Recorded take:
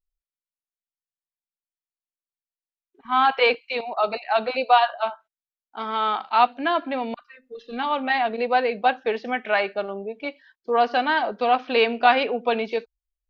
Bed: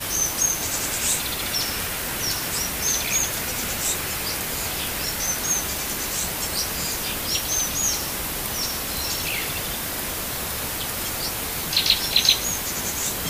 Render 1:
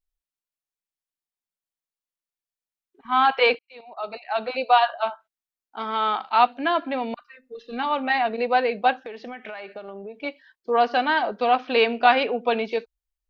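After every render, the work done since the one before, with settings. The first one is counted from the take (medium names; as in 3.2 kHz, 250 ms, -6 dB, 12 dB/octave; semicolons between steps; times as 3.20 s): 3.59–4.84 s: fade in; 7.12–8.49 s: band-stop 3.3 kHz; 9.03–10.14 s: compression 10:1, threshold -32 dBFS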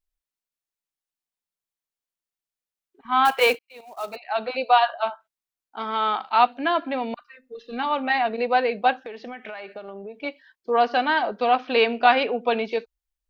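3.25–4.16 s: short-mantissa float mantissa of 2-bit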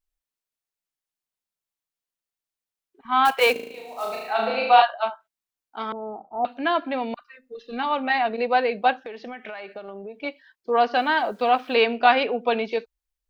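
3.52–4.82 s: flutter echo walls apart 6.3 m, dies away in 0.95 s; 5.92–6.45 s: steep low-pass 690 Hz; 10.95–11.75 s: word length cut 10-bit, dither none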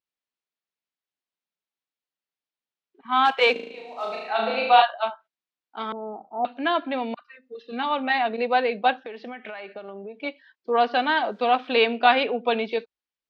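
Chebyshev band-pass 180–3800 Hz, order 2; dynamic bell 3.6 kHz, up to +5 dB, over -49 dBFS, Q 5.6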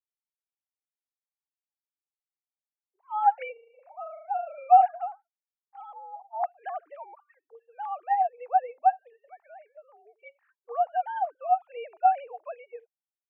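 formants replaced by sine waves; ladder band-pass 880 Hz, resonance 65%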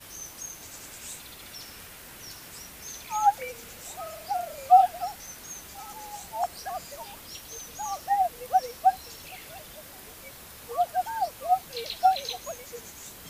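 add bed -18 dB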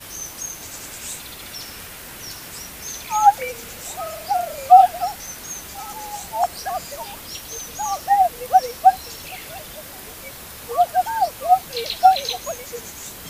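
trim +8.5 dB; peak limiter -1 dBFS, peak gain reduction 2 dB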